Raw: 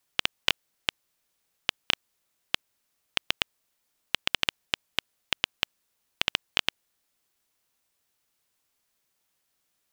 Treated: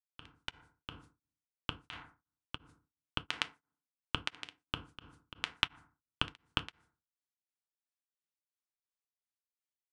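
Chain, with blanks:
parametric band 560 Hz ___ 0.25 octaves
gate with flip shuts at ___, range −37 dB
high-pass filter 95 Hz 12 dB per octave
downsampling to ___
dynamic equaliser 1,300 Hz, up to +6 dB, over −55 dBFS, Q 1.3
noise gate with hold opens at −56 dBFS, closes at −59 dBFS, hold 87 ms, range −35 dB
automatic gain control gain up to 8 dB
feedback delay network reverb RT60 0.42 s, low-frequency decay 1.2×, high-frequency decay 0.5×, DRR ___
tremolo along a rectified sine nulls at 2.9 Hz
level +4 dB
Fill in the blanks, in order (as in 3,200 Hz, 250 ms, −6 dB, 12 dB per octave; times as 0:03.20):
−11.5 dB, −10 dBFS, 22,050 Hz, 9 dB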